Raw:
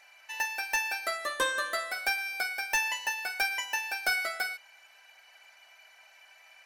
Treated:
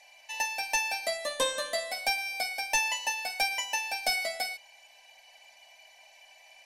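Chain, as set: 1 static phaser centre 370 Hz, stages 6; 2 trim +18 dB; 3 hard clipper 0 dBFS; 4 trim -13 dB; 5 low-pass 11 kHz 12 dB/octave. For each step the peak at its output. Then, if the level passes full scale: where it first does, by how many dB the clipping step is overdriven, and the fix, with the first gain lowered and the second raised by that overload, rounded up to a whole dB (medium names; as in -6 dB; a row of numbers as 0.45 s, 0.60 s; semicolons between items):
-19.5 dBFS, -1.5 dBFS, -1.5 dBFS, -14.5 dBFS, -15.0 dBFS; nothing clips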